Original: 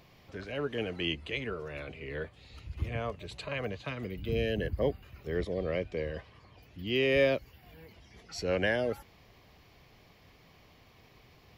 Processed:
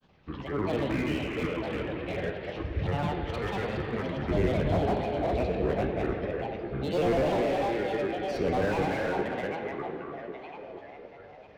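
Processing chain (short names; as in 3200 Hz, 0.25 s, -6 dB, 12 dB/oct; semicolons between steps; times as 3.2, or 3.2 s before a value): gate -55 dBFS, range -7 dB; tape echo 0.359 s, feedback 72%, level -4.5 dB, low-pass 3800 Hz; grains, grains 20/s, pitch spread up and down by 7 st; air absorption 200 m; plate-style reverb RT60 2.5 s, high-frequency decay 0.85×, DRR 5 dB; slew limiter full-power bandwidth 20 Hz; gain +5.5 dB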